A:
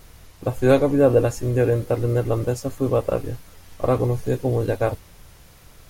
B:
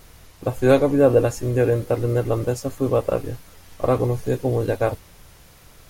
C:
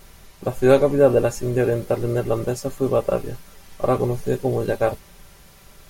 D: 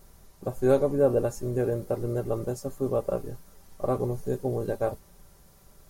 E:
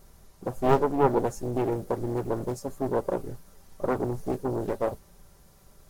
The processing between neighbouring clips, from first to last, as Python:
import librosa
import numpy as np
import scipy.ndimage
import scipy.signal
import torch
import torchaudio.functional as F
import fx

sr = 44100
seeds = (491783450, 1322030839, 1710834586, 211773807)

y1 = fx.low_shelf(x, sr, hz=150.0, db=-3.0)
y1 = F.gain(torch.from_numpy(y1), 1.0).numpy()
y2 = y1 + 0.44 * np.pad(y1, (int(5.1 * sr / 1000.0), 0))[:len(y1)]
y3 = fx.peak_eq(y2, sr, hz=2600.0, db=-10.5, octaves=1.6)
y3 = F.gain(torch.from_numpy(y3), -6.5).numpy()
y4 = fx.doppler_dist(y3, sr, depth_ms=0.99)